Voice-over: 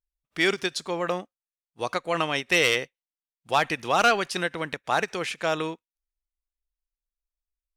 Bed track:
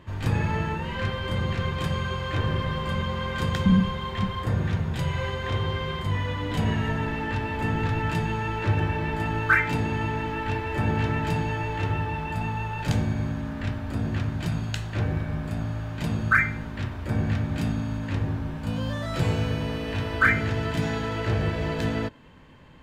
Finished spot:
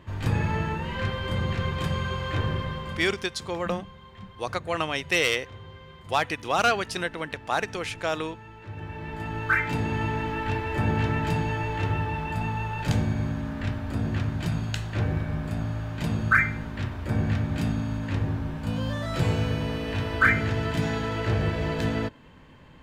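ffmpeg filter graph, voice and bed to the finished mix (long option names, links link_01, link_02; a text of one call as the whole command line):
ffmpeg -i stem1.wav -i stem2.wav -filter_complex "[0:a]adelay=2600,volume=-2dB[link_01];[1:a]volume=16.5dB,afade=type=out:start_time=2.36:duration=0.92:silence=0.149624,afade=type=in:start_time=8.68:duration=1.34:silence=0.141254[link_02];[link_01][link_02]amix=inputs=2:normalize=0" out.wav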